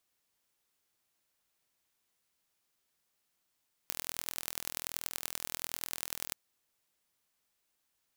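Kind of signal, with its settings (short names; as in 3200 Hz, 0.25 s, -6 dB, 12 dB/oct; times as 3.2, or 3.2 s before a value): pulse train 41.3/s, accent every 4, -6.5 dBFS 2.44 s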